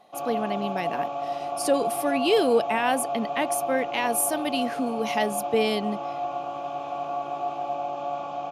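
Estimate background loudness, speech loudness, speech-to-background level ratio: −30.5 LKFS, −26.5 LKFS, 4.0 dB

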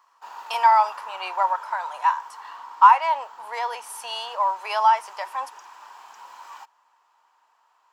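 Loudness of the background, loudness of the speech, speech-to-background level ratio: −41.5 LKFS, −22.0 LKFS, 19.5 dB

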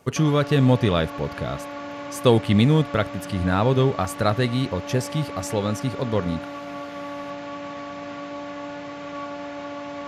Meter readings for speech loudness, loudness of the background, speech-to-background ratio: −22.5 LKFS, −34.5 LKFS, 12.0 dB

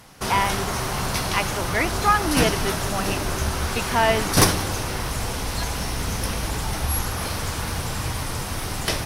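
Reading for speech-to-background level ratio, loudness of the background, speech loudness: 0.0 dB, −25.0 LKFS, −25.0 LKFS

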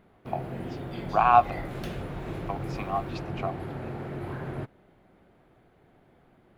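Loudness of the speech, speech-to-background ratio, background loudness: −27.0 LKFS, 9.5 dB, −36.5 LKFS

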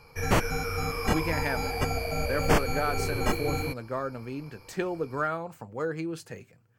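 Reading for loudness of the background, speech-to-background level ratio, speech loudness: −29.5 LKFS, −4.0 dB, −33.5 LKFS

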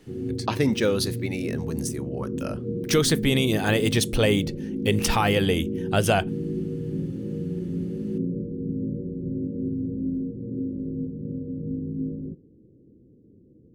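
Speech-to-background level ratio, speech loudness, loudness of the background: 5.5 dB, −25.0 LKFS, −30.5 LKFS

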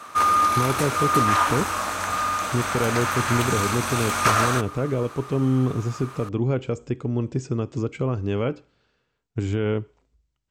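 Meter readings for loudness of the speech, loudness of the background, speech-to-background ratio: −26.5 LKFS, −22.5 LKFS, −4.0 dB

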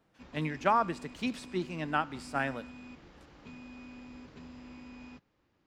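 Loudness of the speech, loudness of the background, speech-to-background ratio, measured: −33.0 LKFS, −49.5 LKFS, 16.5 dB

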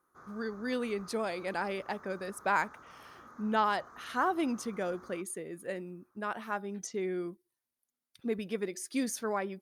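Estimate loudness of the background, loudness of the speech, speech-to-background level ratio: −54.0 LKFS, −35.0 LKFS, 19.0 dB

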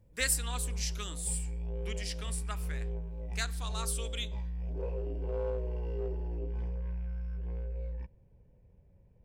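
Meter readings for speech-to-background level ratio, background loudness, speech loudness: 2.0 dB, −38.5 LKFS, −36.5 LKFS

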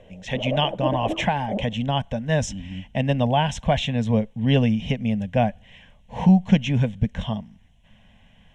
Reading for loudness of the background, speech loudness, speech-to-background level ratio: −30.5 LKFS, −23.0 LKFS, 7.5 dB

